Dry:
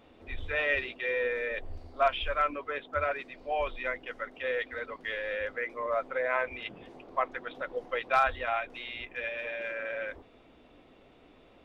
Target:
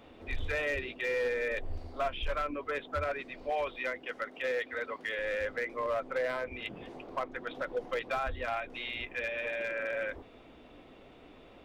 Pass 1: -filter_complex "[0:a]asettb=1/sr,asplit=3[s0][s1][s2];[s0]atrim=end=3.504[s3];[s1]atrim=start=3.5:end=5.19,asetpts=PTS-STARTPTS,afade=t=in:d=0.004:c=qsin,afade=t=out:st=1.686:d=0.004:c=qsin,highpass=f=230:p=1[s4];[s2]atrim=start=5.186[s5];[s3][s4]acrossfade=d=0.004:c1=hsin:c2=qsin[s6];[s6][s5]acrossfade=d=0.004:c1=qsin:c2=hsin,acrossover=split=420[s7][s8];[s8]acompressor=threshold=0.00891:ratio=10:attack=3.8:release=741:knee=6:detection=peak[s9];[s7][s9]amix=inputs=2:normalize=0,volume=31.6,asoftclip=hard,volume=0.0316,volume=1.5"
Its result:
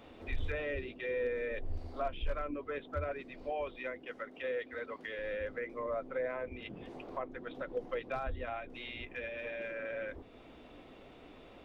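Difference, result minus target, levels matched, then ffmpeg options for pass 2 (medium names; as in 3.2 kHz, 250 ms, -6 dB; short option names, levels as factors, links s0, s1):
compression: peak gain reduction +8.5 dB
-filter_complex "[0:a]asettb=1/sr,asplit=3[s0][s1][s2];[s0]atrim=end=3.504[s3];[s1]atrim=start=3.5:end=5.19,asetpts=PTS-STARTPTS,afade=t=in:d=0.004:c=qsin,afade=t=out:st=1.686:d=0.004:c=qsin,highpass=f=230:p=1[s4];[s2]atrim=start=5.186[s5];[s3][s4]acrossfade=d=0.004:c1=hsin:c2=qsin[s6];[s6][s5]acrossfade=d=0.004:c1=qsin:c2=hsin,acrossover=split=420[s7][s8];[s8]acompressor=threshold=0.0266:ratio=10:attack=3.8:release=741:knee=6:detection=peak[s9];[s7][s9]amix=inputs=2:normalize=0,volume=31.6,asoftclip=hard,volume=0.0316,volume=1.5"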